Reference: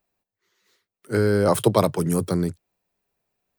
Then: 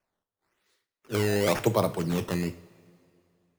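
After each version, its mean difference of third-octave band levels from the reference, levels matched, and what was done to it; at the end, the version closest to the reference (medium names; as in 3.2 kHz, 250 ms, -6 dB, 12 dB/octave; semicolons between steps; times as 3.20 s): 6.0 dB: decimation with a swept rate 11×, swing 160% 0.95 Hz; two-slope reverb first 0.4 s, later 2.5 s, from -18 dB, DRR 10 dB; trim -6 dB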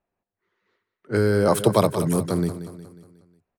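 3.0 dB: level-controlled noise filter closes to 1.8 kHz, open at -18 dBFS; feedback delay 181 ms, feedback 50%, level -12 dB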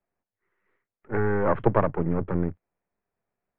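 9.0 dB: partial rectifier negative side -12 dB; steep low-pass 2.2 kHz 36 dB/octave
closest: second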